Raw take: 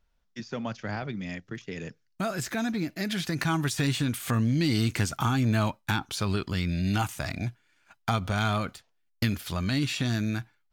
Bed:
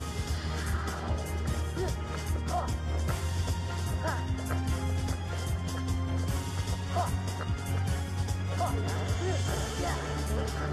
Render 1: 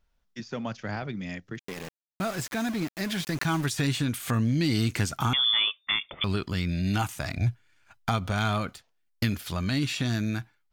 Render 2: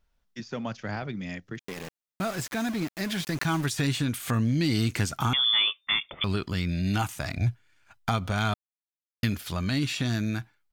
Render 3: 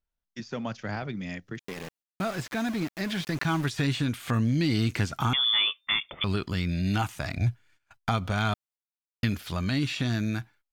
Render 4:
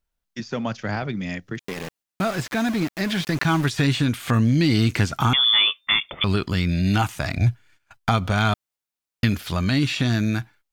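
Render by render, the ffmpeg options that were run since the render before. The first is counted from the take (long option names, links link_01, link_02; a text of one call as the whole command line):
ffmpeg -i in.wav -filter_complex "[0:a]asettb=1/sr,asplit=3[link_01][link_02][link_03];[link_01]atrim=end=1.594[link_04];[link_02]atrim=start=1.59:end=3.66,asetpts=PTS-STARTPTS,afade=type=in:duration=0.004:curve=qsin,afade=type=out:start_time=2.066:duration=0.004:curve=qsin,aeval=exprs='val(0)*gte(abs(val(0)),0.0178)':channel_layout=same[link_05];[link_03]atrim=start=3.656[link_06];[link_04][link_05]acrossfade=duration=0.004:curve1=hsin:curve2=qsin[link_07];[link_07][link_06]acrossfade=duration=0.004:curve1=qsin:curve2=hsin,asettb=1/sr,asplit=3[link_08][link_09][link_10];[link_08]atrim=end=5.334[link_11];[link_09]atrim=start=5.33:end=6.24,asetpts=PTS-STARTPTS,afade=type=in:duration=0.004:curve=qsin,afade=type=out:start_time=0.906:duration=0.004:curve=qsin,lowpass=frequency=3100:width_type=q:width=0.5098,lowpass=frequency=3100:width_type=q:width=0.6013,lowpass=frequency=3100:width_type=q:width=0.9,lowpass=frequency=3100:width_type=q:width=2.563,afreqshift=-3600[link_12];[link_10]atrim=start=6.236[link_13];[link_11][link_12]acrossfade=duration=0.004:curve1=hsin:curve2=qsin[link_14];[link_14][link_13]acrossfade=duration=0.004:curve1=qsin:curve2=hsin,asettb=1/sr,asplit=3[link_15][link_16][link_17];[link_15]atrim=end=7.374[link_18];[link_16]atrim=start=7.37:end=8.09,asetpts=PTS-STARTPTS,afade=type=in:duration=0.004:curve=qsin,afade=type=out:start_time=0.716:duration=0.004:curve=qsin,lowshelf=frequency=140:width_type=q:width=1.5:gain=7.5[link_19];[link_17]atrim=start=8.086[link_20];[link_18][link_19]acrossfade=duration=0.004:curve1=hsin:curve2=qsin[link_21];[link_21][link_20]acrossfade=duration=0.004:curve1=qsin:curve2=hsin" out.wav
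ffmpeg -i in.wav -filter_complex "[0:a]asplit=3[link_01][link_02][link_03];[link_01]afade=type=out:start_time=5.51:duration=0.02[link_04];[link_02]asplit=2[link_05][link_06];[link_06]adelay=14,volume=-8dB[link_07];[link_05][link_07]amix=inputs=2:normalize=0,afade=type=in:start_time=5.51:duration=0.02,afade=type=out:start_time=5.99:duration=0.02[link_08];[link_03]afade=type=in:start_time=5.99:duration=0.02[link_09];[link_04][link_08][link_09]amix=inputs=3:normalize=0,asplit=3[link_10][link_11][link_12];[link_10]atrim=end=8.54,asetpts=PTS-STARTPTS,afade=type=out:start_time=8.536:duration=0.004:curve=hsin[link_13];[link_11]atrim=start=8.54:end=9.23,asetpts=PTS-STARTPTS,volume=0[link_14];[link_12]atrim=start=9.23,asetpts=PTS-STARTPTS,afade=type=in:duration=0.004:curve=hsin[link_15];[link_13][link_14][link_15]concat=n=3:v=0:a=1" out.wav
ffmpeg -i in.wav -filter_complex "[0:a]acrossover=split=5000[link_01][link_02];[link_02]acompressor=threshold=-46dB:ratio=4:attack=1:release=60[link_03];[link_01][link_03]amix=inputs=2:normalize=0,agate=range=-15dB:threshold=-56dB:ratio=16:detection=peak" out.wav
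ffmpeg -i in.wav -af "volume=6.5dB" out.wav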